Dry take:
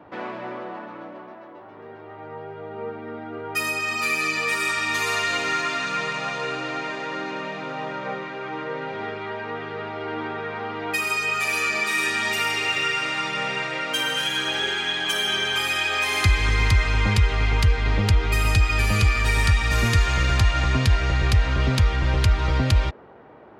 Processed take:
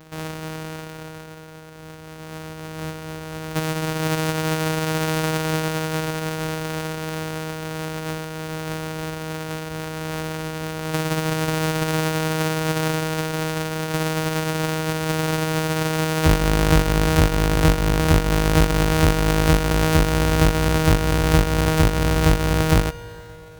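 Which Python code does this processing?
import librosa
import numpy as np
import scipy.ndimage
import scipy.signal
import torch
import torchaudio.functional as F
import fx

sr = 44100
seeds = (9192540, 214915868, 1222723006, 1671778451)

y = np.r_[np.sort(x[:len(x) // 256 * 256].reshape(-1, 256), axis=1).ravel(), x[len(x) // 256 * 256:]]
y = fx.rev_schroeder(y, sr, rt60_s=3.6, comb_ms=25, drr_db=16.5)
y = fx.pitch_keep_formants(y, sr, semitones=-1.5)
y = y * 10.0 ** (1.5 / 20.0)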